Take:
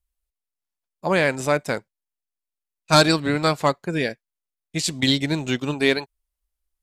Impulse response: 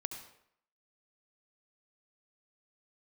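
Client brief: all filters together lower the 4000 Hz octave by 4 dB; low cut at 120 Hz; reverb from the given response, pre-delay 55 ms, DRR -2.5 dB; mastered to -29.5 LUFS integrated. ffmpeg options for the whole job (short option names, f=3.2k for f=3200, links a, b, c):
-filter_complex "[0:a]highpass=120,equalizer=f=4k:t=o:g=-4.5,asplit=2[a][b];[1:a]atrim=start_sample=2205,adelay=55[c];[b][c]afir=irnorm=-1:irlink=0,volume=3dB[d];[a][d]amix=inputs=2:normalize=0,volume=-11dB"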